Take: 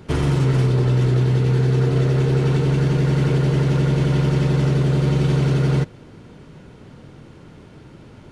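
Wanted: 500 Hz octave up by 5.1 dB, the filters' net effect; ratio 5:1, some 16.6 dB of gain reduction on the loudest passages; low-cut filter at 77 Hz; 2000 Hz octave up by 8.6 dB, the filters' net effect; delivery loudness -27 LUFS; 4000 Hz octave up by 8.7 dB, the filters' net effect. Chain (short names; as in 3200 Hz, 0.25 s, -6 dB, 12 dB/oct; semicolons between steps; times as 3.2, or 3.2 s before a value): HPF 77 Hz; bell 500 Hz +6 dB; bell 2000 Hz +8.5 dB; bell 4000 Hz +8 dB; compressor 5:1, threshold -33 dBFS; gain +8 dB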